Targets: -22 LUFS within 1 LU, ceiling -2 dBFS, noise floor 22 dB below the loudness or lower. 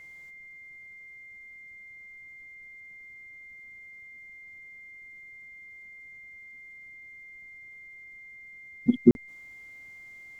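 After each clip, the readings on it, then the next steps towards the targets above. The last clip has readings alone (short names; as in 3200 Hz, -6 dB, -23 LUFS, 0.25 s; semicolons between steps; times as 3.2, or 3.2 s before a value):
dropouts 1; longest dropout 41 ms; steady tone 2100 Hz; tone level -45 dBFS; loudness -25.5 LUFS; peak -5.5 dBFS; loudness target -22.0 LUFS
-> interpolate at 9.11, 41 ms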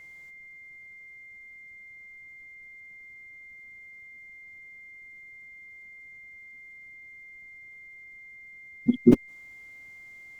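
dropouts 0; steady tone 2100 Hz; tone level -45 dBFS
-> notch 2100 Hz, Q 30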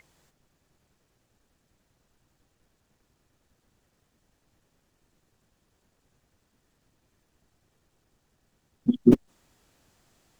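steady tone none; loudness -23.0 LUFS; peak -5.5 dBFS; loudness target -22.0 LUFS
-> gain +1 dB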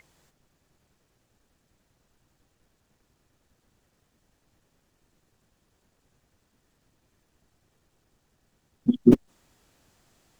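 loudness -22.0 LUFS; peak -4.5 dBFS; noise floor -73 dBFS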